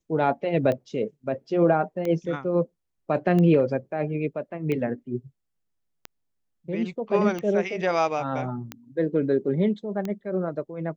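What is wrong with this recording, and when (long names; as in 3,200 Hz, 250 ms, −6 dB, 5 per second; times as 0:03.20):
scratch tick 45 rpm −17 dBFS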